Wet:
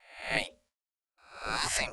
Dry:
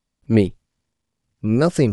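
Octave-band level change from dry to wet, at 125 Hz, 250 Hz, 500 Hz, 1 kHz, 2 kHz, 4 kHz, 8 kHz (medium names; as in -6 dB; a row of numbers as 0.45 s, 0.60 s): -27.5 dB, -28.5 dB, -19.5 dB, -3.5 dB, +2.0 dB, +3.5 dB, no reading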